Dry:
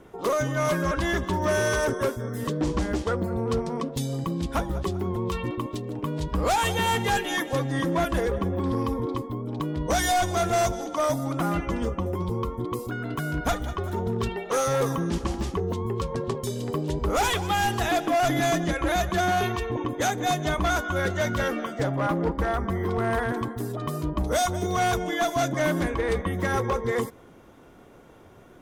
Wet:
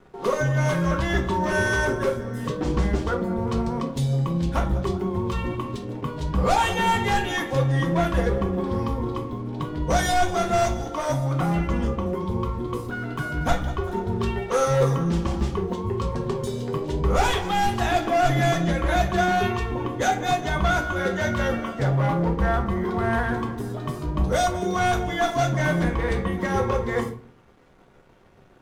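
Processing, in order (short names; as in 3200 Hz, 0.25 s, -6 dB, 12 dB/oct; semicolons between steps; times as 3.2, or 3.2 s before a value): high shelf 9000 Hz -11.5 dB; crossover distortion -52 dBFS; on a send: reverb RT60 0.40 s, pre-delay 4 ms, DRR 1.5 dB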